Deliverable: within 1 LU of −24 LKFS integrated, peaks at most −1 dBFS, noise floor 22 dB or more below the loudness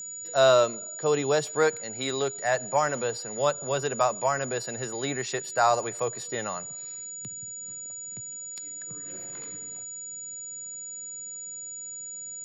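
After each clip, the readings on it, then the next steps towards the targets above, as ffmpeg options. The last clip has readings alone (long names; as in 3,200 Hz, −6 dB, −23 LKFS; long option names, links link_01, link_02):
interfering tone 6,900 Hz; level of the tone −36 dBFS; integrated loudness −28.5 LKFS; sample peak −9.0 dBFS; target loudness −24.0 LKFS
→ -af "bandreject=frequency=6900:width=30"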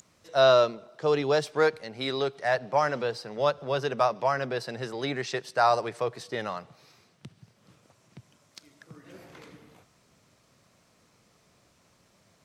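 interfering tone none found; integrated loudness −27.0 LKFS; sample peak −9.5 dBFS; target loudness −24.0 LKFS
→ -af "volume=3dB"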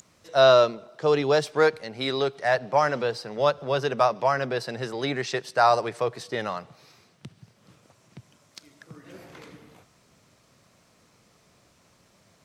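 integrated loudness −24.0 LKFS; sample peak −6.5 dBFS; background noise floor −62 dBFS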